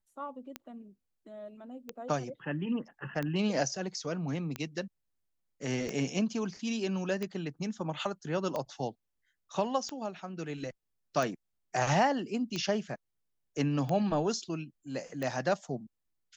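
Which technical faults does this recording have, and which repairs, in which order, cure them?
tick 45 rpm -21 dBFS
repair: de-click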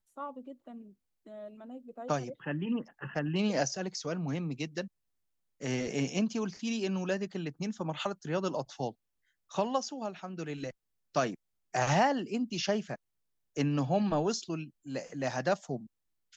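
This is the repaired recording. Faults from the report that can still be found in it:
none

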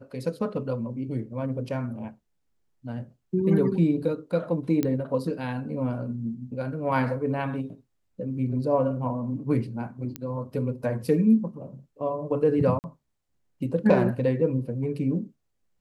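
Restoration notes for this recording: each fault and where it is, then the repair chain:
4.83 pop -13 dBFS
10.16 pop -16 dBFS
12.79–12.84 gap 49 ms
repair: de-click; interpolate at 12.79, 49 ms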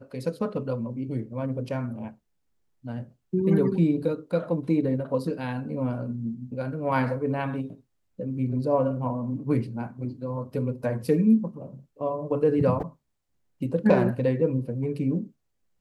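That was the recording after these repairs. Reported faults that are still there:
none

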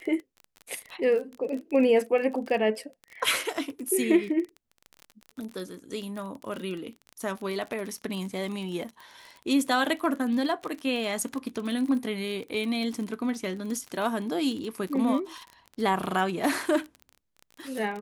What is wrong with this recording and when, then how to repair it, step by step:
crackle 29/s -33 dBFS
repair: de-click

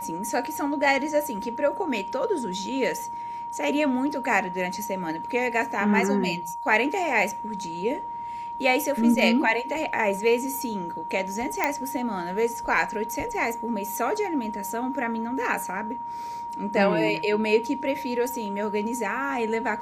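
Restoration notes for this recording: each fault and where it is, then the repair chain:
tone 940 Hz -31 dBFS
11.64 pop -9 dBFS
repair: de-click; notch 940 Hz, Q 30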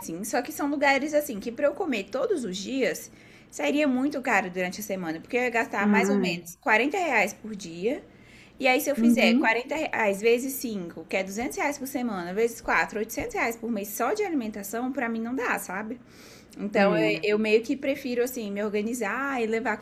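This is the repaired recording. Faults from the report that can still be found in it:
none

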